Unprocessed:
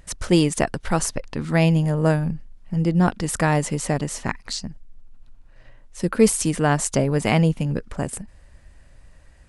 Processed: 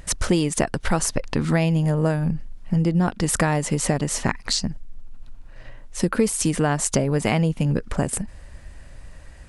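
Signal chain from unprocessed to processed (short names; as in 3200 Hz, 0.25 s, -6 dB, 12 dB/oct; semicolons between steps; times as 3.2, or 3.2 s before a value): compressor 5:1, threshold -25 dBFS, peak gain reduction 14 dB; gain +7.5 dB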